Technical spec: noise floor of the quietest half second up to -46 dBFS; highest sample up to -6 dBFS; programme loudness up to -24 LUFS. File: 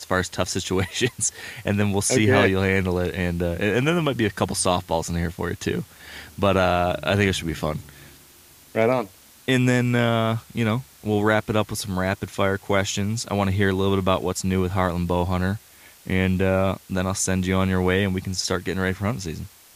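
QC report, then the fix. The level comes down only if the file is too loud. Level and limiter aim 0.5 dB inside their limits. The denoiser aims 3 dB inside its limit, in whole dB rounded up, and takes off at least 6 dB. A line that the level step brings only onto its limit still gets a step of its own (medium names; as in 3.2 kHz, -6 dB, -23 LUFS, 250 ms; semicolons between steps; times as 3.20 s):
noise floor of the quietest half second -50 dBFS: pass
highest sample -5.5 dBFS: fail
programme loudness -23.0 LUFS: fail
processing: trim -1.5 dB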